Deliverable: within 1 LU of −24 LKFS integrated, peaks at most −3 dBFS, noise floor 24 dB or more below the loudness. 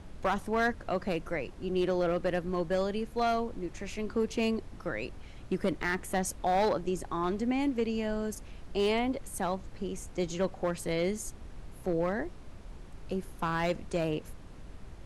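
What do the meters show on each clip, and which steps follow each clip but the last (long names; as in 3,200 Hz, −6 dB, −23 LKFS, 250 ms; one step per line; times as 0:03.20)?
share of clipped samples 0.9%; peaks flattened at −21.5 dBFS; background noise floor −48 dBFS; target noise floor −57 dBFS; integrated loudness −32.5 LKFS; sample peak −21.5 dBFS; target loudness −24.0 LKFS
→ clipped peaks rebuilt −21.5 dBFS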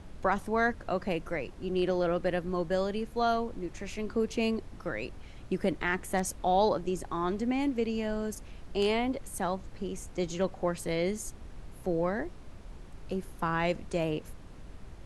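share of clipped samples 0.0%; background noise floor −48 dBFS; target noise floor −56 dBFS
→ noise reduction from a noise print 8 dB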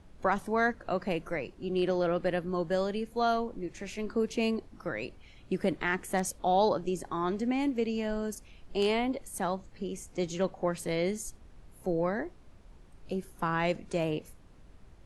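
background noise floor −55 dBFS; target noise floor −56 dBFS
→ noise reduction from a noise print 6 dB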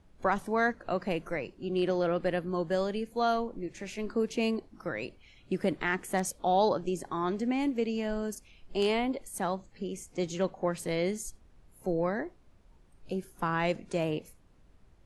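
background noise floor −60 dBFS; integrated loudness −32.0 LKFS; sample peak −13.5 dBFS; target loudness −24.0 LKFS
→ level +8 dB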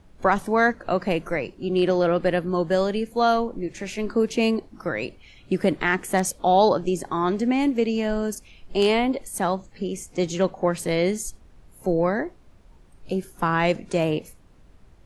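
integrated loudness −24.0 LKFS; sample peak −5.5 dBFS; background noise floor −52 dBFS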